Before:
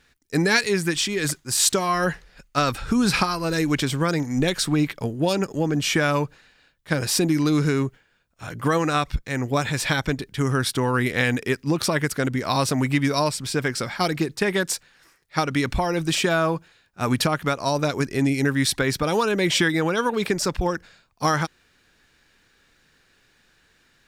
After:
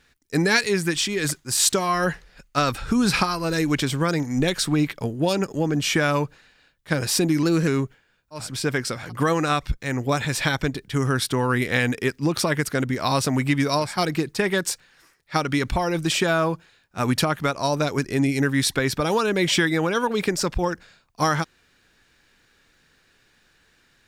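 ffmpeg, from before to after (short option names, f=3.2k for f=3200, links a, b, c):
-filter_complex "[0:a]asplit=6[a][b][c][d][e][f];[a]atrim=end=7.434[g];[b]atrim=start=7.43:end=7.7,asetpts=PTS-STARTPTS,asetrate=48510,aresample=44100[h];[c]atrim=start=7.696:end=8.57[i];[d]atrim=start=13.21:end=14.03[j];[e]atrim=start=8.33:end=13.45[k];[f]atrim=start=13.79[l];[g][h]acrossfade=d=0.004:c1=hsin:c2=hsin[m];[m][i]acrossfade=d=0.004:c1=hsin:c2=hsin[n];[n][j]acrossfade=d=0.24:c1=tri:c2=tri[o];[o][k]acrossfade=d=0.24:c1=tri:c2=tri[p];[p][l]acrossfade=d=0.24:c1=tri:c2=tri"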